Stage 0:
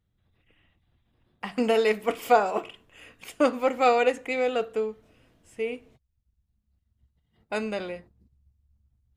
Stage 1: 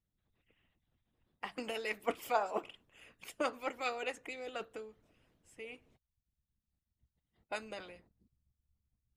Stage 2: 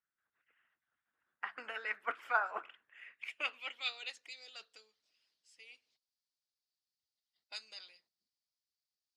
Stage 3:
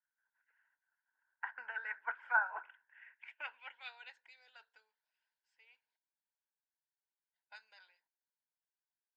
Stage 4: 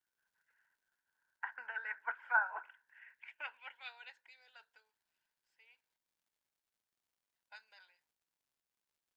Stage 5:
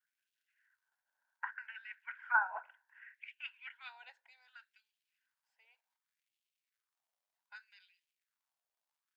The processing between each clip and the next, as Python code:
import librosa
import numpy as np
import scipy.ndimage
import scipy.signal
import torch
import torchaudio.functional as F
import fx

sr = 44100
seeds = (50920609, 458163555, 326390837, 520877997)

y1 = fx.hpss(x, sr, part='harmonic', gain_db=-14)
y1 = F.gain(torch.from_numpy(y1), -6.0).numpy()
y2 = fx.filter_sweep_bandpass(y1, sr, from_hz=1500.0, to_hz=4700.0, start_s=2.7, end_s=4.27, q=4.8)
y2 = F.gain(torch.from_numpy(y2), 11.5).numpy()
y3 = fx.double_bandpass(y2, sr, hz=1200.0, octaves=0.71)
y3 = F.gain(torch.from_numpy(y3), 5.0).numpy()
y4 = fx.dmg_crackle(y3, sr, seeds[0], per_s=190.0, level_db=-73.0)
y5 = fx.filter_lfo_highpass(y4, sr, shape='sine', hz=0.66, low_hz=630.0, high_hz=2900.0, q=2.9)
y5 = F.gain(torch.from_numpy(y5), -4.0).numpy()